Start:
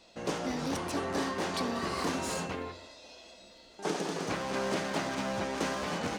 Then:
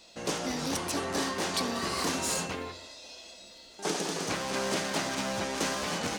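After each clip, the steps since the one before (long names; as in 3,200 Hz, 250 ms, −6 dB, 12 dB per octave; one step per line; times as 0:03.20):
high-shelf EQ 3,300 Hz +10 dB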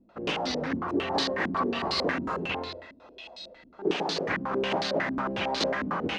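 low-pass on a step sequencer 11 Hz 250–4,200 Hz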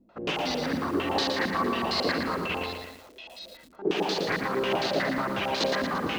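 feedback echo at a low word length 115 ms, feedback 55%, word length 8 bits, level −5 dB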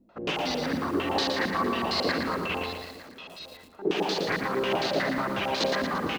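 single-tap delay 907 ms −20.5 dB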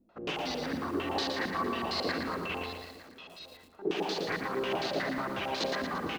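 convolution reverb RT60 0.40 s, pre-delay 3 ms, DRR 17 dB
level −5.5 dB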